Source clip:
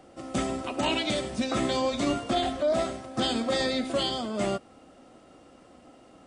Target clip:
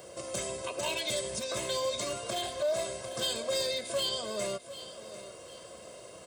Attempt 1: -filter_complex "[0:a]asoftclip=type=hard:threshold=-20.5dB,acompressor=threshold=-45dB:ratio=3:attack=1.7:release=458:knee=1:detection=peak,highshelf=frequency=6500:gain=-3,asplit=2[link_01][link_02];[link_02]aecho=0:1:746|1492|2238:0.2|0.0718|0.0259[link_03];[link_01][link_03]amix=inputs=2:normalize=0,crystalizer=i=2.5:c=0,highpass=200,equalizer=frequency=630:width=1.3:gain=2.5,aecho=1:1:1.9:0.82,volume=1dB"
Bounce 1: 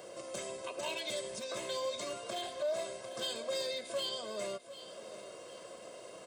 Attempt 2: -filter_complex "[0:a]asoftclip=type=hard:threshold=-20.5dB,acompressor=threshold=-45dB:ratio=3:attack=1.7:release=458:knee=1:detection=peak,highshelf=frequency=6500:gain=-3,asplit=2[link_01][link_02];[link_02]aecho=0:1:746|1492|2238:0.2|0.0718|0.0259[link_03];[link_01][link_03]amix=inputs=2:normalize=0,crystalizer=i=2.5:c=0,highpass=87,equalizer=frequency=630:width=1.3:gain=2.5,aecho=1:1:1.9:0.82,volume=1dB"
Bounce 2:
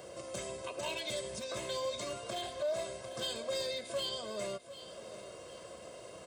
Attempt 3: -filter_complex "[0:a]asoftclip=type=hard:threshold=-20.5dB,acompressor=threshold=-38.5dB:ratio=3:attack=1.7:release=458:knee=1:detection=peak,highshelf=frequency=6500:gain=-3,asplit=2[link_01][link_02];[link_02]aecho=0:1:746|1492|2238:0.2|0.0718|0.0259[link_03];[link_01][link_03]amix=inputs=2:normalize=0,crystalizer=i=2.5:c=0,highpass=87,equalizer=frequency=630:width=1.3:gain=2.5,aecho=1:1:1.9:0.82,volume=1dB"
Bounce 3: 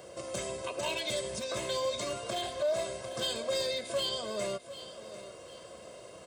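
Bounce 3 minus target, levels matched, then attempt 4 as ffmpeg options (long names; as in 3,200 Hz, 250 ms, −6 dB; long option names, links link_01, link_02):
8,000 Hz band −3.0 dB
-filter_complex "[0:a]asoftclip=type=hard:threshold=-20.5dB,acompressor=threshold=-38.5dB:ratio=3:attack=1.7:release=458:knee=1:detection=peak,highshelf=frequency=6500:gain=4,asplit=2[link_01][link_02];[link_02]aecho=0:1:746|1492|2238:0.2|0.0718|0.0259[link_03];[link_01][link_03]amix=inputs=2:normalize=0,crystalizer=i=2.5:c=0,highpass=87,equalizer=frequency=630:width=1.3:gain=2.5,aecho=1:1:1.9:0.82,volume=1dB"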